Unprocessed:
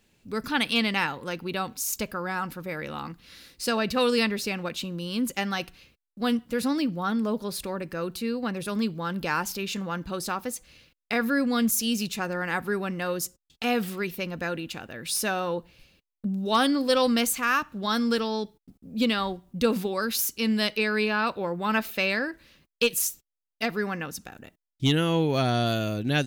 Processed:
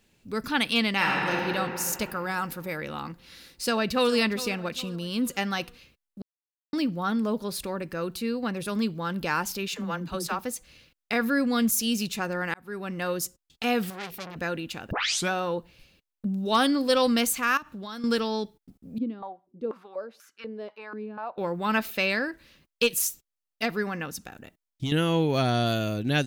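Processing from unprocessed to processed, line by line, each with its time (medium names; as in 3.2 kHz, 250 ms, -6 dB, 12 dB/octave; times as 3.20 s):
0.95–1.47 s: reverb throw, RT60 2.9 s, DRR -3 dB
2.01–2.77 s: treble shelf 4.8 kHz +7.5 dB
3.63–4.13 s: echo throw 410 ms, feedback 45%, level -15 dB
6.22–6.73 s: mute
9.68–10.39 s: phase dispersion lows, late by 63 ms, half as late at 330 Hz
12.54–13.03 s: fade in
13.90–14.36 s: transformer saturation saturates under 3.4 kHz
14.91 s: tape start 0.40 s
17.57–18.04 s: compression 8:1, threshold -34 dBFS
18.98–21.38 s: step-sequenced band-pass 4.1 Hz 290–1500 Hz
23.82–24.92 s: compression, threshold -25 dBFS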